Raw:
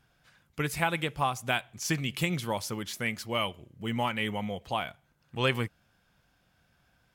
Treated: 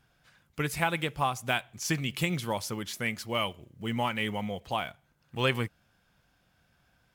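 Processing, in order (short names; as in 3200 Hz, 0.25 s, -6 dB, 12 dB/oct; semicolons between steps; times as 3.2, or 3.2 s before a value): block floating point 7-bit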